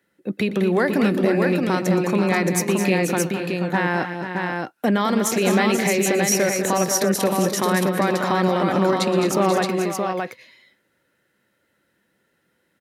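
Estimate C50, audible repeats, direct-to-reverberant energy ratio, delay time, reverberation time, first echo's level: no reverb, 4, no reverb, 119 ms, no reverb, -16.5 dB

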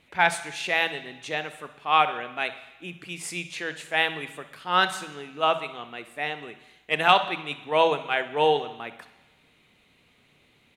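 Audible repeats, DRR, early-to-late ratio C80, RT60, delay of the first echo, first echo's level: 1, 10.5 dB, 15.0 dB, 1.0 s, 63 ms, -15.5 dB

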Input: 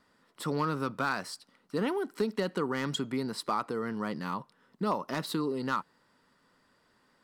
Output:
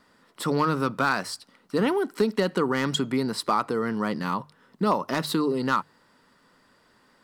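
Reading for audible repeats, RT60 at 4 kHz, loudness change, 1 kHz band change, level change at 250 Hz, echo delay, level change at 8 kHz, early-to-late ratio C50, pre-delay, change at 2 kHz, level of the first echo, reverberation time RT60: no echo, no reverb, +7.0 dB, +7.0 dB, +7.0 dB, no echo, +7.0 dB, no reverb, no reverb, +7.0 dB, no echo, no reverb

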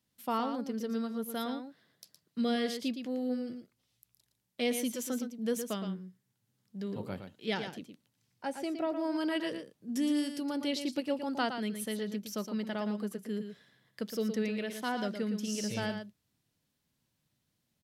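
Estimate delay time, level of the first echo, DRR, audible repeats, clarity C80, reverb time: 115 ms, -8.0 dB, no reverb, 1, no reverb, no reverb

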